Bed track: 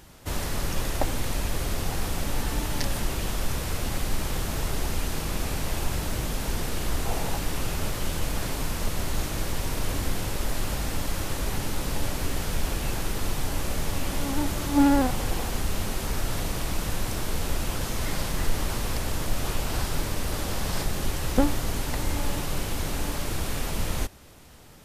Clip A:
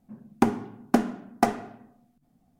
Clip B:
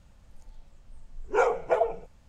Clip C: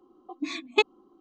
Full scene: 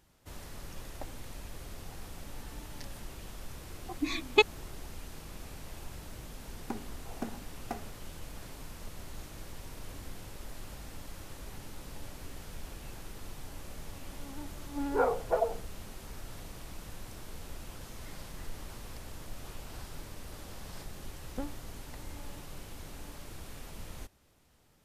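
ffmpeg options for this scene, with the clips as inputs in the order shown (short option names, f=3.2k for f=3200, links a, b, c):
-filter_complex "[0:a]volume=-16.5dB[a];[2:a]lowpass=f=1.7k:w=0.5412,lowpass=f=1.7k:w=1.3066[b];[3:a]atrim=end=1.2,asetpts=PTS-STARTPTS,volume=-0.5dB,afade=t=in:d=0.004:c=hsin,afade=t=out:st=1.196:d=0.004:c=hsin,adelay=3600[c];[1:a]atrim=end=2.59,asetpts=PTS-STARTPTS,volume=-17.5dB,afade=t=in:d=0.004:c=hsin,afade=t=out:st=2.586:d=0.004:c=hsin,adelay=6280[d];[b]atrim=end=2.28,asetpts=PTS-STARTPTS,volume=-4.5dB,afade=t=in:d=0.004:c=hsin,afade=t=out:st=2.276:d=0.004:c=hsin,adelay=13610[e];[a][c][d][e]amix=inputs=4:normalize=0"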